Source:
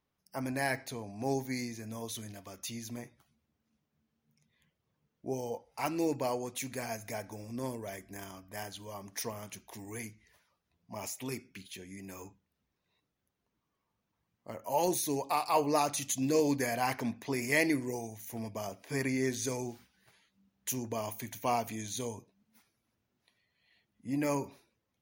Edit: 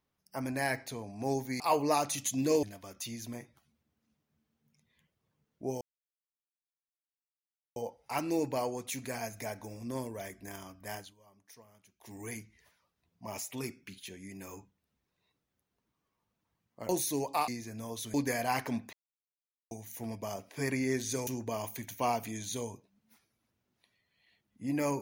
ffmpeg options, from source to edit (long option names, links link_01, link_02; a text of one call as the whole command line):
ffmpeg -i in.wav -filter_complex "[0:a]asplit=12[link_01][link_02][link_03][link_04][link_05][link_06][link_07][link_08][link_09][link_10][link_11][link_12];[link_01]atrim=end=1.602[link_13];[link_02]atrim=start=15.438:end=16.472[link_14];[link_03]atrim=start=2.258:end=5.44,asetpts=PTS-STARTPTS,afade=type=out:start_time=3.178:duration=0.004:curve=hsin,apad=pad_dur=1.95[link_15];[link_04]atrim=start=5.44:end=8.82,asetpts=PTS-STARTPTS,afade=type=in:duration=0.004:curve=hsin,afade=type=out:start_time=3.2:duration=0.18:silence=0.11885[link_16];[link_05]atrim=start=8.82:end=9.66,asetpts=PTS-STARTPTS,volume=-18.5dB[link_17];[link_06]atrim=start=9.66:end=14.572,asetpts=PTS-STARTPTS,afade=type=in:duration=0.18:silence=0.11885[link_18];[link_07]atrim=start=14.848:end=15.442[link_19];[link_08]atrim=start=1.598:end=2.262[link_20];[link_09]atrim=start=16.468:end=17.26,asetpts=PTS-STARTPTS,afade=type=out:start_time=0.788:duration=0.004:curve=hsin[link_21];[link_10]atrim=start=17.26:end=18.04,asetpts=PTS-STARTPTS,volume=0[link_22];[link_11]atrim=start=18.04:end=19.602,asetpts=PTS-STARTPTS,afade=type=in:duration=0.004:curve=hsin[link_23];[link_12]atrim=start=20.708[link_24];[link_13][link_14]acrossfade=duration=0.004:curve1=hsin:curve2=hsin[link_25];[link_15][link_16][link_17][link_18]concat=n=4:v=0:a=1[link_26];[link_25][link_26]acrossfade=duration=0.004:curve1=hsin:curve2=hsin[link_27];[link_27][link_19]acrossfade=duration=0.004:curve1=hsin:curve2=hsin[link_28];[link_28][link_20]acrossfade=duration=0.004:curve1=hsin:curve2=hsin[link_29];[link_21][link_22][link_23]concat=n=3:v=0:a=1[link_30];[link_29][link_30]acrossfade=duration=0.004:curve1=hsin:curve2=hsin[link_31];[link_31][link_24]acrossfade=duration=0.004:curve1=hsin:curve2=hsin" out.wav